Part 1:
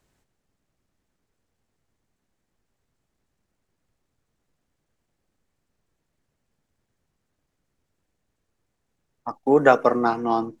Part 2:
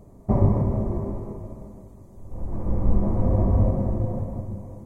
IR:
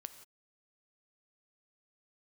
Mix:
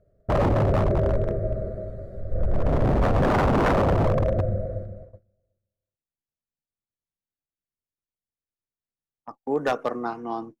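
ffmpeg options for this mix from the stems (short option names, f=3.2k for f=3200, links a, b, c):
-filter_complex "[0:a]highshelf=f=3.5k:g=-4.5,volume=-8dB[a];[1:a]firequalizer=gain_entry='entry(100,0);entry(170,-4);entry(250,-11);entry(430,2);entry(630,9);entry(900,-28);entry(1400,10);entry(2700,-10);entry(4100,-3);entry(6100,-22)':delay=0.05:min_phase=1,dynaudnorm=f=170:g=7:m=7dB,volume=2dB,asplit=2[b][c];[c]volume=-11.5dB,aecho=0:1:371|742|1113:1|0.19|0.0361[d];[a][b][d]amix=inputs=3:normalize=0,agate=range=-17dB:threshold=-41dB:ratio=16:detection=peak,aeval=exprs='0.178*(abs(mod(val(0)/0.178+3,4)-2)-1)':c=same"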